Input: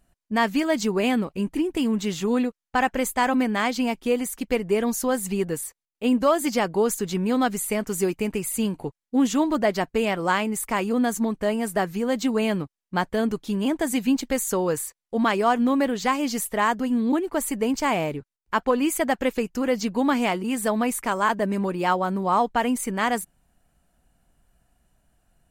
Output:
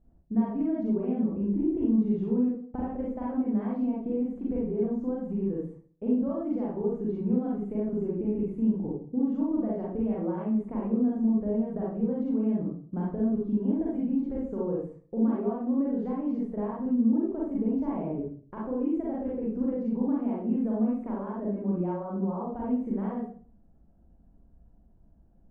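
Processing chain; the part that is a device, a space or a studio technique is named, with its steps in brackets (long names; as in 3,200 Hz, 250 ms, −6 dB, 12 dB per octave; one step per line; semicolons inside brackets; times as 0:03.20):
television next door (downward compressor 5 to 1, threshold −32 dBFS, peak gain reduction 15.5 dB; low-pass filter 470 Hz 12 dB per octave; convolution reverb RT60 0.45 s, pre-delay 35 ms, DRR −5.5 dB)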